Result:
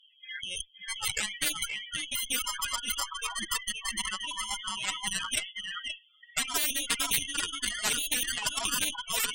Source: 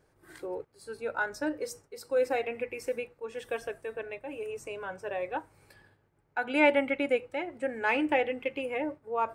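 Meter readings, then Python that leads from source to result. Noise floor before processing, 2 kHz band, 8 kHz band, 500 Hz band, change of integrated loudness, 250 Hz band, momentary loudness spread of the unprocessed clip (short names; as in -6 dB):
-70 dBFS, -0.5 dB, +22.5 dB, -19.0 dB, +1.5 dB, -11.5 dB, 13 LU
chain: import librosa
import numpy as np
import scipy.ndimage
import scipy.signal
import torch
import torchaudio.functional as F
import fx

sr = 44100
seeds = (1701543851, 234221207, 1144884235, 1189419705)

y = fx.env_lowpass_down(x, sr, base_hz=820.0, full_db=-22.5)
y = scipy.signal.sosfilt(scipy.signal.butter(2, 260.0, 'highpass', fs=sr, output='sos'), y)
y = y + 0.76 * np.pad(y, (int(6.5 * sr / 1000.0), 0))[:len(y)]
y = fx.leveller(y, sr, passes=2)
y = fx.freq_invert(y, sr, carrier_hz=3600)
y = fx.spec_topn(y, sr, count=8)
y = y + 10.0 ** (-9.0 / 20.0) * np.pad(y, (int(526 * sr / 1000.0), 0))[:len(y)]
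y = fx.cheby_harmonics(y, sr, harmonics=(3, 5, 7, 8), levels_db=(-26, -23, -21, -43), full_scale_db=-8.5)
y = fx.spectral_comp(y, sr, ratio=10.0)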